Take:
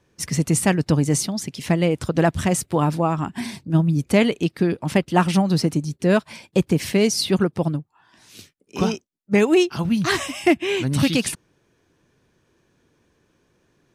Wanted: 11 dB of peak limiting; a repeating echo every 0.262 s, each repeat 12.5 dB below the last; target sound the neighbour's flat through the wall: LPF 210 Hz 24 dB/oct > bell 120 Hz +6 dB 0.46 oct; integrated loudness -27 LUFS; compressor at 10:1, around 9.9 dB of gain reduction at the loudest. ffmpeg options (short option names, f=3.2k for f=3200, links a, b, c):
-af "acompressor=threshold=-22dB:ratio=10,alimiter=limit=-22dB:level=0:latency=1,lowpass=f=210:w=0.5412,lowpass=f=210:w=1.3066,equalizer=f=120:t=o:w=0.46:g=6,aecho=1:1:262|524|786:0.237|0.0569|0.0137,volume=6.5dB"